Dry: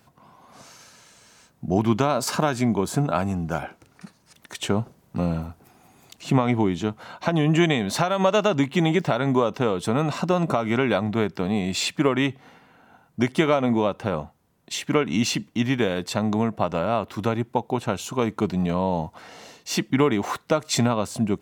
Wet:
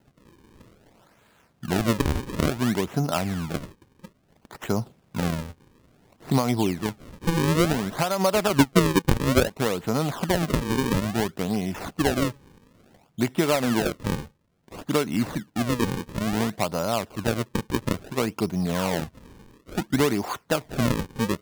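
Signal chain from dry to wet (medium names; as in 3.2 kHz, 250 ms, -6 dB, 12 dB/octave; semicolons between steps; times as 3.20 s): median filter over 9 samples; 8.53–9.57 s: transient shaper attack +9 dB, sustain -10 dB; decimation with a swept rate 37×, swing 160% 0.58 Hz; trim -2 dB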